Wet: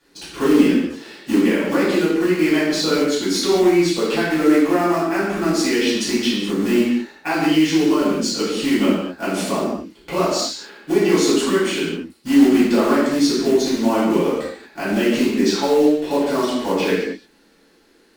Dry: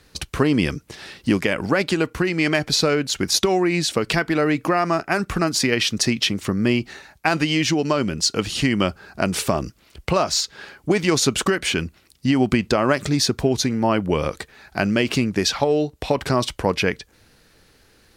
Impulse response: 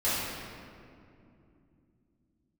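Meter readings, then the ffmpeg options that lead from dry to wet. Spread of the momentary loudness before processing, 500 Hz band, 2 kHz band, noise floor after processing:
7 LU, +4.0 dB, -1.0 dB, -55 dBFS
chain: -filter_complex "[0:a]lowshelf=f=170:t=q:w=3:g=-13,acrusher=bits=4:mode=log:mix=0:aa=0.000001[a];[1:a]atrim=start_sample=2205,afade=t=out:st=0.45:d=0.01,atrim=end_sample=20286,asetrate=70560,aresample=44100[b];[a][b]afir=irnorm=-1:irlink=0,volume=-8.5dB"

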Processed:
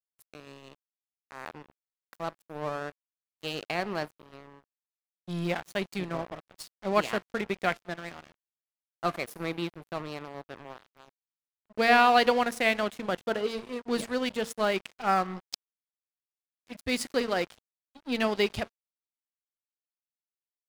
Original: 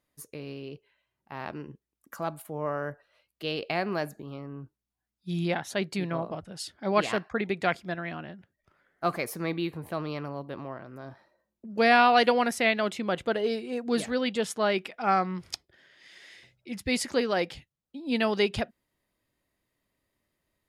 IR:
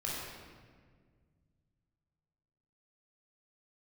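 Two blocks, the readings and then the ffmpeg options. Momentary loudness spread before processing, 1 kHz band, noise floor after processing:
17 LU, -1.0 dB, under -85 dBFS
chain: -filter_complex "[0:a]bandreject=f=229.9:t=h:w=4,bandreject=f=459.8:t=h:w=4,bandreject=f=689.7:t=h:w=4,bandreject=f=919.6:t=h:w=4,bandreject=f=1.1495k:t=h:w=4,bandreject=f=1.3794k:t=h:w=4,asplit=2[a][b];[1:a]atrim=start_sample=2205,highshelf=f=5.3k:g=10[c];[b][c]afir=irnorm=-1:irlink=0,volume=-24.5dB[d];[a][d]amix=inputs=2:normalize=0,aeval=exprs='sgn(val(0))*max(abs(val(0))-0.0141,0)':c=same"

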